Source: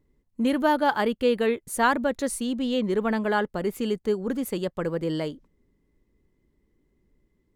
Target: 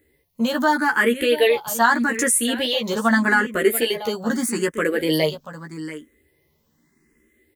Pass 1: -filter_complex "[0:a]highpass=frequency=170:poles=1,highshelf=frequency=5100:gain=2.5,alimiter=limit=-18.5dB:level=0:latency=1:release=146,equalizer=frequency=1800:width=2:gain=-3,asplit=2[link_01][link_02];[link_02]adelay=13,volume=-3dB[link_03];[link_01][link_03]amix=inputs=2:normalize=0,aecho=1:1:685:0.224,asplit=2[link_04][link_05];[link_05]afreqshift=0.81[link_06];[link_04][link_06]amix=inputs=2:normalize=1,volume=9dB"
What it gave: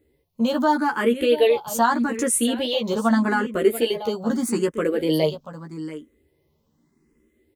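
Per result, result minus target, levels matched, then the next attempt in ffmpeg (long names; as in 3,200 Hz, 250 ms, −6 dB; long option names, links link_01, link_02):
2,000 Hz band −7.0 dB; 8,000 Hz band −2.0 dB
-filter_complex "[0:a]highpass=frequency=170:poles=1,highshelf=frequency=5100:gain=2.5,alimiter=limit=-18.5dB:level=0:latency=1:release=146,equalizer=frequency=1800:width=2:gain=8,asplit=2[link_01][link_02];[link_02]adelay=13,volume=-3dB[link_03];[link_01][link_03]amix=inputs=2:normalize=0,aecho=1:1:685:0.224,asplit=2[link_04][link_05];[link_05]afreqshift=0.81[link_06];[link_04][link_06]amix=inputs=2:normalize=1,volume=9dB"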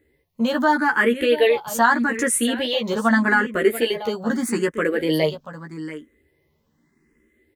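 8,000 Hz band −3.5 dB
-filter_complex "[0:a]highpass=frequency=170:poles=1,highshelf=frequency=5100:gain=14,alimiter=limit=-18.5dB:level=0:latency=1:release=146,equalizer=frequency=1800:width=2:gain=8,asplit=2[link_01][link_02];[link_02]adelay=13,volume=-3dB[link_03];[link_01][link_03]amix=inputs=2:normalize=0,aecho=1:1:685:0.224,asplit=2[link_04][link_05];[link_05]afreqshift=0.81[link_06];[link_04][link_06]amix=inputs=2:normalize=1,volume=9dB"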